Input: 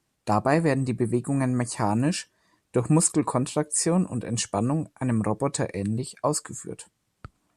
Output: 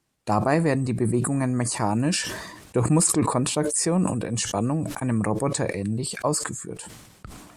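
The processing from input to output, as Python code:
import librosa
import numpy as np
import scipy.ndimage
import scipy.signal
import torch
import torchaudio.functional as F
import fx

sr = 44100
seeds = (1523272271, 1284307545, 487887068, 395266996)

y = fx.sustainer(x, sr, db_per_s=47.0)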